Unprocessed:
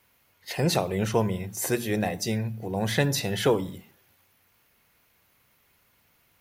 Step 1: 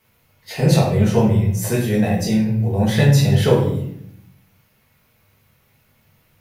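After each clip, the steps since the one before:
parametric band 130 Hz +7.5 dB 1.9 octaves
rectangular room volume 140 cubic metres, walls mixed, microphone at 1.5 metres
level −1.5 dB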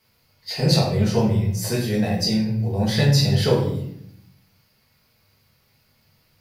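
parametric band 4,700 Hz +14.5 dB 0.36 octaves
level −4 dB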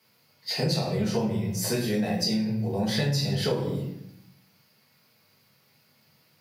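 high-pass filter 130 Hz 24 dB per octave
downward compressor 5 to 1, threshold −23 dBFS, peak gain reduction 9.5 dB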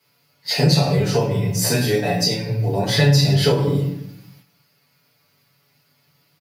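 noise gate −58 dBFS, range −8 dB
comb filter 7 ms, depth 93%
level +6.5 dB

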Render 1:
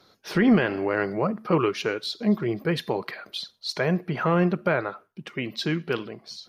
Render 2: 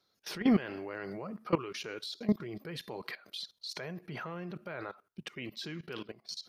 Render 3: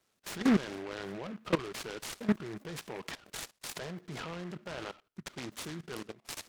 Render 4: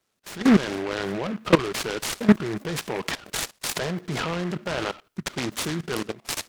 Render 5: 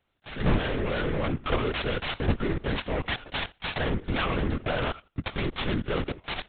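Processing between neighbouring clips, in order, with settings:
high-shelf EQ 2,800 Hz +8 dB; output level in coarse steps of 18 dB; level −4.5 dB
short delay modulated by noise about 1,400 Hz, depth 0.099 ms
automatic gain control gain up to 13 dB
hard clipping −21 dBFS, distortion −4 dB; linear-prediction vocoder at 8 kHz whisper; level +1.5 dB

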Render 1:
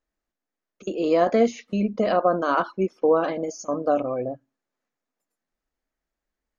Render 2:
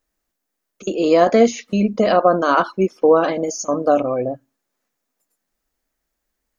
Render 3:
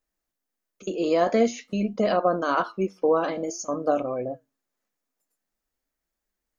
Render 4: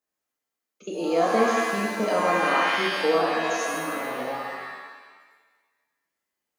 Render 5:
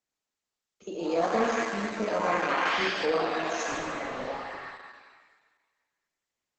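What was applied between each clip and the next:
high-shelf EQ 6,000 Hz +10.5 dB; level +6 dB
flanger 0.48 Hz, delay 4.6 ms, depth 7.1 ms, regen +78%; level −3 dB
high-pass filter 160 Hz 12 dB per octave; healed spectral selection 0:03.39–0:04.24, 380–830 Hz both; reverb with rising layers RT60 1.3 s, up +7 semitones, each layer −2 dB, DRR −1 dB; level −4 dB
level −4 dB; Opus 10 kbit/s 48,000 Hz

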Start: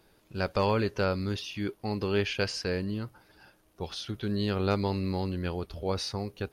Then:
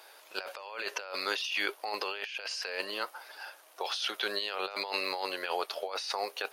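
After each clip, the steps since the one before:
high-pass filter 600 Hz 24 dB per octave
dynamic equaliser 2,700 Hz, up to +5 dB, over −51 dBFS, Q 3.8
compressor whose output falls as the input rises −43 dBFS, ratio −1
level +7 dB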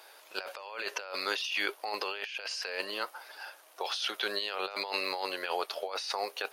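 no processing that can be heard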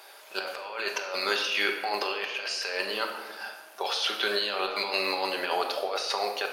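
convolution reverb RT60 1.3 s, pre-delay 5 ms, DRR 2.5 dB
level +3.5 dB

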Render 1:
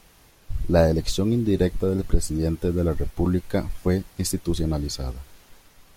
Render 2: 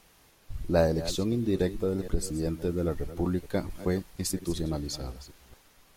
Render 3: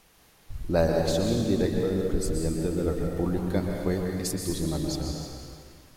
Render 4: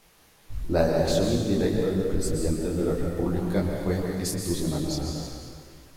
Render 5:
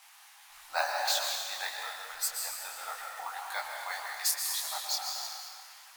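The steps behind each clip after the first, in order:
delay that plays each chunk backwards 231 ms, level −14 dB; low-shelf EQ 150 Hz −5.5 dB; level −4.5 dB
dense smooth reverb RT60 2 s, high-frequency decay 0.9×, pre-delay 110 ms, DRR 1 dB
micro pitch shift up and down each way 59 cents; level +5 dB
elliptic high-pass filter 790 Hz, stop band 50 dB; bad sample-rate conversion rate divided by 2×, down none, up hold; level +4.5 dB

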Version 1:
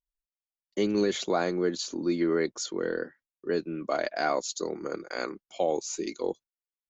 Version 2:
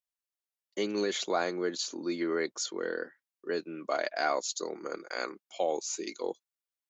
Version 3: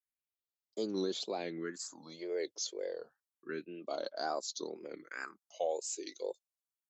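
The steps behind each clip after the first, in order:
high-pass filter 550 Hz 6 dB per octave
tape wow and flutter 140 cents; all-pass phaser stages 4, 0.29 Hz, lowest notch 190–2,300 Hz; level −4.5 dB

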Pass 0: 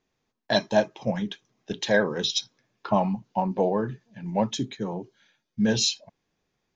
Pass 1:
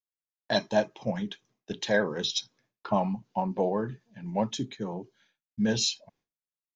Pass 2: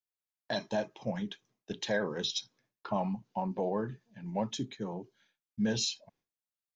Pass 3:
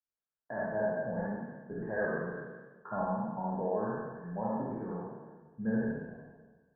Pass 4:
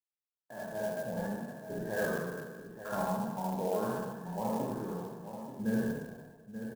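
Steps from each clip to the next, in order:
downward expander −57 dBFS; level −3.5 dB
brickwall limiter −18.5 dBFS, peak gain reduction 6 dB; level −3.5 dB
peak hold with a decay on every bin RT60 1.36 s; Chebyshev low-pass filter 1,700 Hz, order 6; reverb whose tail is shaped and stops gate 100 ms rising, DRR −2.5 dB; level −7 dB
fade in at the beginning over 1.32 s; single-tap delay 884 ms −10 dB; converter with an unsteady clock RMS 0.033 ms

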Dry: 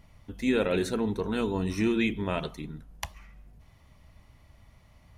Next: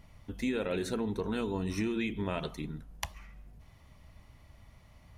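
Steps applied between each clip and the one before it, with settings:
downward compressor 6 to 1, threshold −29 dBFS, peak gain reduction 8.5 dB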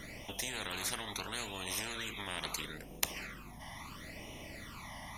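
all-pass phaser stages 12, 0.75 Hz, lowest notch 430–1,500 Hz
every bin compressed towards the loudest bin 10 to 1
level +8 dB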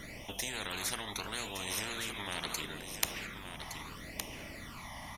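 single-tap delay 1,165 ms −8 dB
level +1 dB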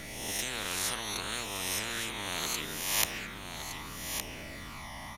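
peak hold with a rise ahead of every peak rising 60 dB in 1.09 s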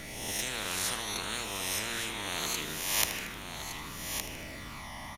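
repeating echo 77 ms, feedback 59%, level −12 dB

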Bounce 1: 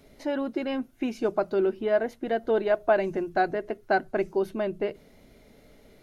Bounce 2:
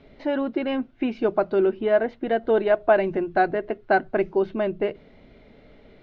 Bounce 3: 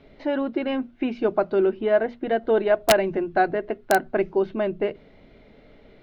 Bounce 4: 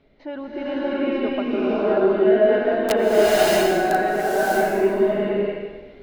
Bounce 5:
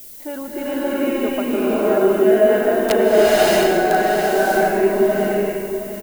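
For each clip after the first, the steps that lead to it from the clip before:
low-pass filter 3,700 Hz 24 dB per octave; level +4 dB
mains-hum notches 60/120/180/240 Hz; wrap-around overflow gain 8.5 dB
slow-attack reverb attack 640 ms, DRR −10.5 dB; level −7.5 dB
background noise violet −41 dBFS; single-tap delay 716 ms −10 dB; level +2.5 dB

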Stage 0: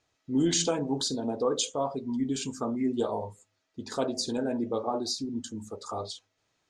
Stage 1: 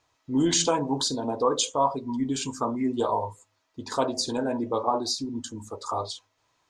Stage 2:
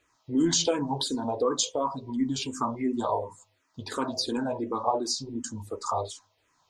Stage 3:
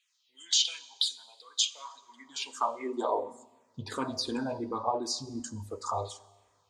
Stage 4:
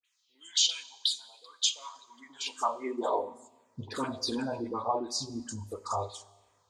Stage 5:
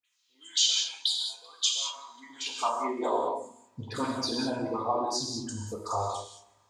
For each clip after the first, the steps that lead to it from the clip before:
thirty-one-band graphic EQ 200 Hz −9 dB, 400 Hz −3 dB, 1,000 Hz +11 dB; level +3.5 dB
in parallel at −0.5 dB: downward compressor, threshold −32 dBFS, peak gain reduction 14 dB; on the sum: frequency shifter mixed with the dry sound −2.8 Hz; level −1.5 dB
four-comb reverb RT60 1.3 s, combs from 30 ms, DRR 17.5 dB; high-pass filter sweep 3,200 Hz → 61 Hz, 0:01.55–0:04.32; dynamic equaliser 2,200 Hz, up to +4 dB, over −42 dBFS, Q 1; level −4.5 dB
all-pass dispersion highs, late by 48 ms, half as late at 1,400 Hz
reverb whose tail is shaped and stops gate 230 ms flat, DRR 0.5 dB

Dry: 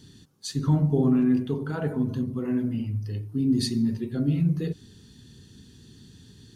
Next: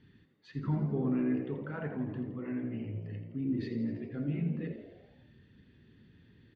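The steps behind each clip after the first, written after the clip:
transistor ladder low-pass 2,500 Hz, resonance 55%
on a send: echo with shifted repeats 83 ms, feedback 58%, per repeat +61 Hz, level −10.5 dB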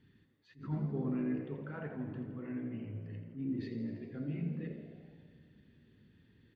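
four-comb reverb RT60 2.9 s, combs from 30 ms, DRR 11.5 dB
level that may rise only so fast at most 180 dB per second
level −4.5 dB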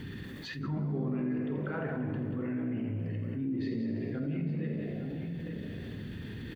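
multi-tap delay 49/184/858 ms −10.5/−8.5/−15.5 dB
envelope flattener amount 70%

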